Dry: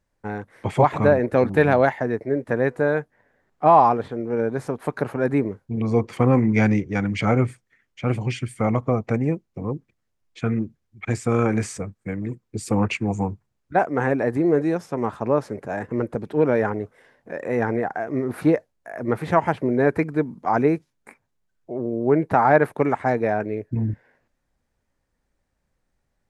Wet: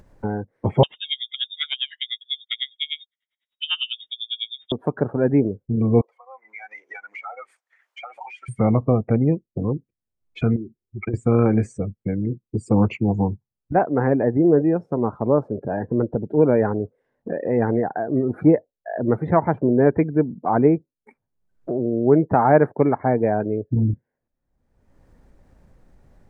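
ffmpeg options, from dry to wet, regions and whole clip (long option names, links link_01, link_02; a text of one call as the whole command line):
ffmpeg -i in.wav -filter_complex "[0:a]asettb=1/sr,asplit=3[link_01][link_02][link_03];[link_01]atrim=end=0.834[link_04];[link_02]atrim=start=0.83:end=4.72,asetpts=PTS-STARTPTS,afade=type=in:duration=0.004:curve=qsin,afade=type=out:start_time=3.886:duration=0.004:curve=qsin,asoftclip=type=hard:threshold=-9dB,lowpass=frequency=3200:width_type=q:width=0.5098,lowpass=frequency=3200:width_type=q:width=0.6013,lowpass=frequency=3200:width_type=q:width=0.9,lowpass=frequency=3200:width_type=q:width=2.563,afreqshift=-3800,aeval=exprs='val(0)*pow(10,-28*(0.5-0.5*cos(2*PI*10*n/s))/20)':channel_layout=same[link_05];[link_03]atrim=start=4.716[link_06];[link_04][link_05]acrossfade=duration=0.004:curve1=hsin:curve2=qsin[link_07];[link_07][link_06]acrossfade=duration=0.004:curve1=qsin:curve2=hsin,asettb=1/sr,asplit=3[link_08][link_09][link_10];[link_08]atrim=end=6.014[link_11];[link_09]atrim=start=6.01:end=8.49,asetpts=PTS-STARTPTS,afade=type=in:duration=0.004:curve=qsin,afade=type=out:start_time=2.476:duration=0.004:curve=qsin,highpass=frequency=740:width=0.5412,highpass=frequency=740:width=1.3066,acompressor=threshold=-43dB:ratio=5:attack=3.2:release=140:knee=1:detection=peak[link_12];[link_10]atrim=start=8.486[link_13];[link_11][link_12]acrossfade=duration=0.004:curve1=hsin:curve2=qsin[link_14];[link_14][link_13]acrossfade=duration=0.004:curve1=qsin:curve2=hsin,asettb=1/sr,asplit=3[link_15][link_16][link_17];[link_15]atrim=end=10.564[link_18];[link_16]atrim=start=10.56:end=11.14,asetpts=PTS-STARTPTS,afade=type=in:duration=0.004:curve=qsin,afade=type=out:start_time=0.576:duration=0.004:curve=qsin,equalizer=frequency=380:width_type=o:width=0.56:gain=13.5,acompressor=threshold=-31dB:ratio=8:attack=3.2:release=140:knee=1:detection=peak[link_19];[link_17]atrim=start=11.136[link_20];[link_18][link_19]acrossfade=duration=0.004:curve1=hsin:curve2=qsin[link_21];[link_21][link_20]acrossfade=duration=0.004:curve1=qsin:curve2=hsin,afftdn=noise_reduction=26:noise_floor=-35,tiltshelf=frequency=1200:gain=7,acompressor=mode=upward:threshold=-17dB:ratio=2.5,volume=-2.5dB" out.wav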